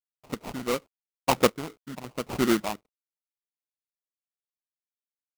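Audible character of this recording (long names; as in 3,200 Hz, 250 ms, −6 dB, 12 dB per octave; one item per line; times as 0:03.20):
a quantiser's noise floor 10 bits, dither none
phaser sweep stages 6, 2.9 Hz, lowest notch 430–1,100 Hz
aliases and images of a low sample rate 1,700 Hz, jitter 20%
chopped level 0.87 Hz, depth 60%, duty 30%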